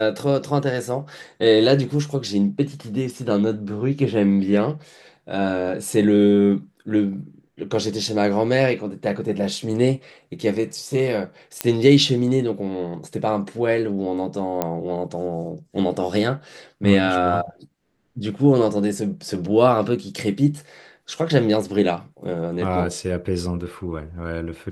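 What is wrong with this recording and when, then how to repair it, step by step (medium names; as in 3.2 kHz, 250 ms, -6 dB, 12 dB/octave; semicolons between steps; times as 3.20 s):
11.61 s: pop -4 dBFS
14.62 s: pop -8 dBFS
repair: de-click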